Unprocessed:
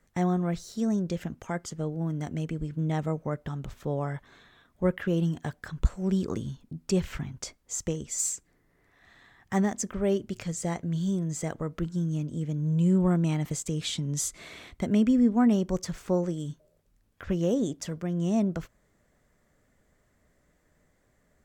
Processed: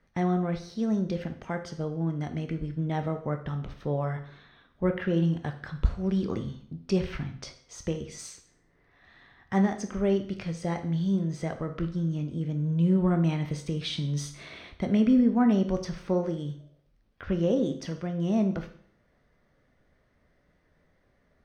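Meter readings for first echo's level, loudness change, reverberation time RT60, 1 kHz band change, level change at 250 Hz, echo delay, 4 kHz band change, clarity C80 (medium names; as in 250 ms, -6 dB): no echo, +0.5 dB, 0.55 s, +1.0 dB, +0.5 dB, no echo, 0.0 dB, 14.5 dB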